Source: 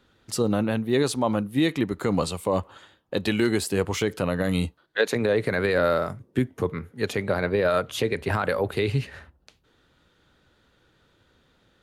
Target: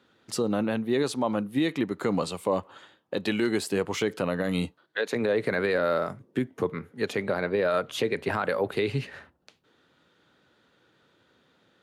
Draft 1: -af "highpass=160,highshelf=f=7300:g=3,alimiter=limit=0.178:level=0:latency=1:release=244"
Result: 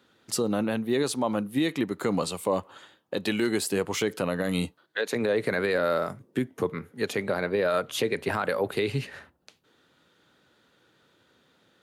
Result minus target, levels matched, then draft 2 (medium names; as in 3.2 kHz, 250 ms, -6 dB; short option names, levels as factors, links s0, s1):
8 kHz band +5.0 dB
-af "highpass=160,highshelf=f=7300:g=-7,alimiter=limit=0.178:level=0:latency=1:release=244"